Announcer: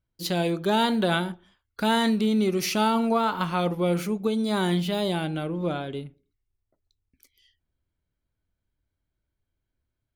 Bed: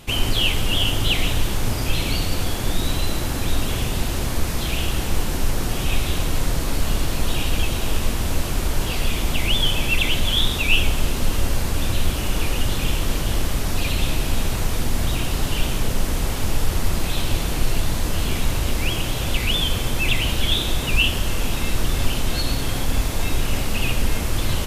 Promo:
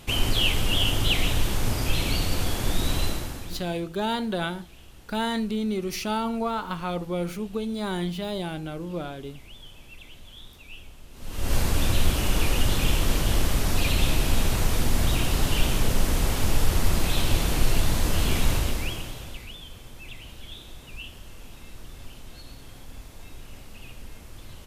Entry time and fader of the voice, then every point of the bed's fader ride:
3.30 s, -4.5 dB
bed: 3.05 s -3 dB
3.88 s -26.5 dB
11.09 s -26.5 dB
11.54 s -1 dB
18.53 s -1 dB
19.57 s -21.5 dB

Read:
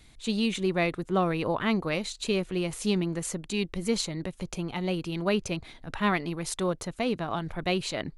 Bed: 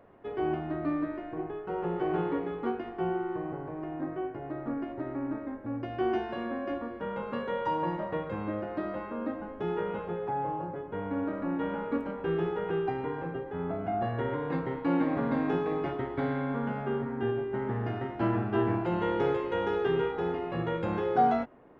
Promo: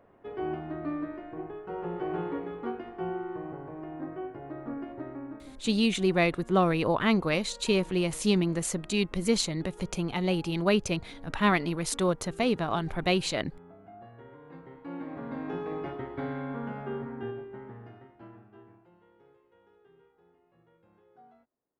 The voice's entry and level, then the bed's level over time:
5.40 s, +2.0 dB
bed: 5.02 s -3 dB
5.97 s -18.5 dB
14.35 s -18.5 dB
15.74 s -4 dB
17.11 s -4 dB
19.06 s -33.5 dB

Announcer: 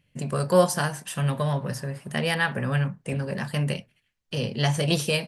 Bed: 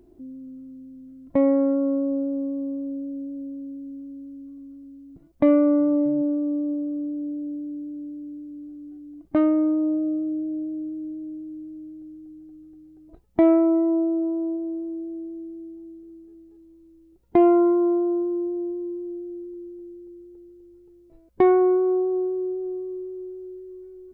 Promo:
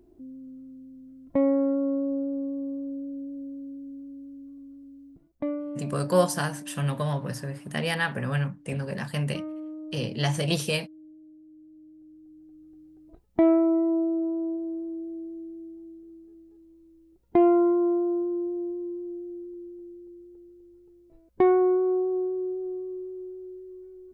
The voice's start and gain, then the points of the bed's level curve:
5.60 s, -2.5 dB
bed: 5.06 s -3.5 dB
5.63 s -16.5 dB
11.37 s -16.5 dB
12.80 s -3 dB

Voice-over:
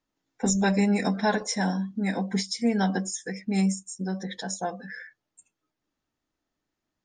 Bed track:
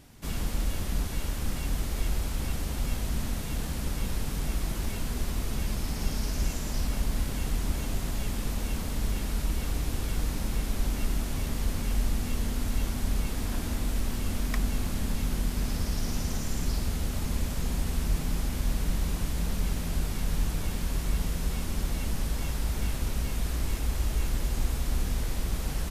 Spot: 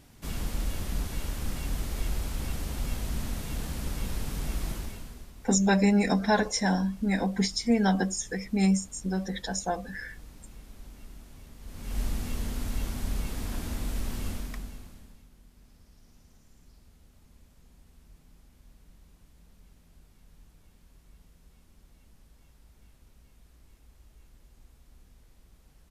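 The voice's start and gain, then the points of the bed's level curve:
5.05 s, +0.5 dB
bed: 4.71 s -2 dB
5.33 s -18.5 dB
11.59 s -18.5 dB
12.00 s -3 dB
14.28 s -3 dB
15.30 s -28 dB

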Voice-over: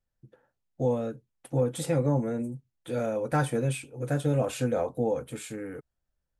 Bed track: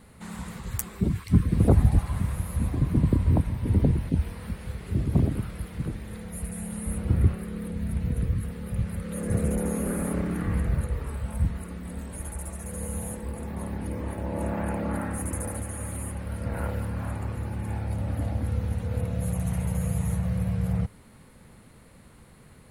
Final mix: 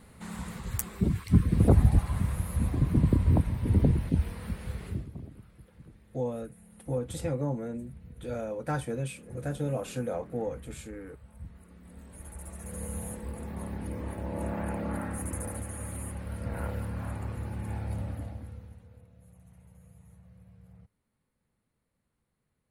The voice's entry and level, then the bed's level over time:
5.35 s, -5.5 dB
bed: 4.86 s -1.5 dB
5.15 s -20.5 dB
11.32 s -20.5 dB
12.74 s -4 dB
17.98 s -4 dB
19.08 s -28 dB

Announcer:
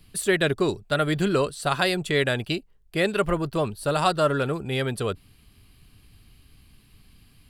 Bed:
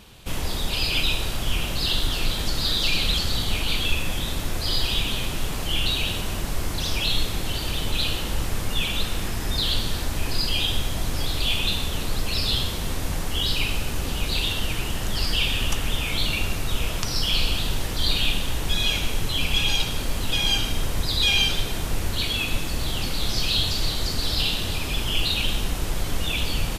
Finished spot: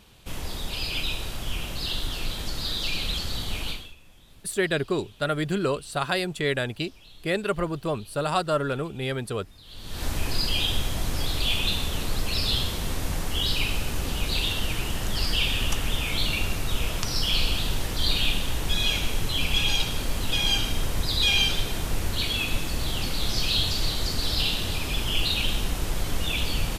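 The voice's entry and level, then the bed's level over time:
4.30 s, -3.0 dB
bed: 3.69 s -6 dB
3.96 s -27.5 dB
9.62 s -27.5 dB
10.05 s -1.5 dB

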